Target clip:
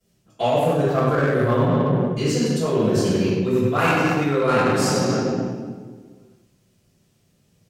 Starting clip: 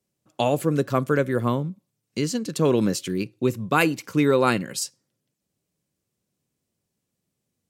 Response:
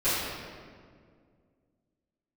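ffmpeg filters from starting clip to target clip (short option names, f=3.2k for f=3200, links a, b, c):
-filter_complex "[0:a]equalizer=f=3k:w=0.33:g=4[a];[1:a]atrim=start_sample=2205,asetrate=52920,aresample=44100[b];[a][b]afir=irnorm=-1:irlink=0,areverse,acompressor=threshold=-22dB:ratio=8,areverse,equalizer=f=340:w=0.96:g=-3.5,aecho=1:1:96:0.299,asplit=2[c][d];[d]adynamicsmooth=sensitivity=2.5:basefreq=600,volume=-1.5dB[e];[c][e]amix=inputs=2:normalize=0,volume=2dB"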